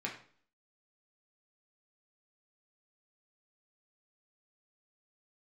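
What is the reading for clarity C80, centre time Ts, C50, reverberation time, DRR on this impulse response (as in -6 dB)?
12.0 dB, 22 ms, 8.0 dB, 0.50 s, -2.5 dB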